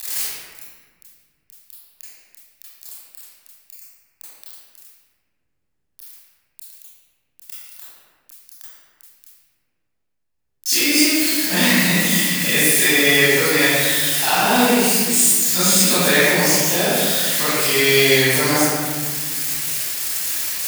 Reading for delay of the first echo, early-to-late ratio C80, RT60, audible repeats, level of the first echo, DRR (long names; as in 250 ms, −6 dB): no echo audible, −2.5 dB, 1.7 s, no echo audible, no echo audible, −12.0 dB